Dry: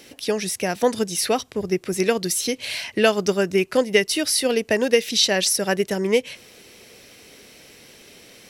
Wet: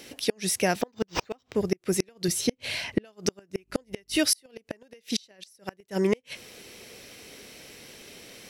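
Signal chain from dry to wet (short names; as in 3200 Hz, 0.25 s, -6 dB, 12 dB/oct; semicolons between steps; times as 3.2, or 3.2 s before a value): 2.28–3.05 tilt -2 dB/oct; 3.56–4.17 buzz 50 Hz, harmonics 6, -43 dBFS -5 dB/oct; flipped gate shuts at -11 dBFS, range -36 dB; 0.81–1.55 decimation joined by straight lines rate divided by 4×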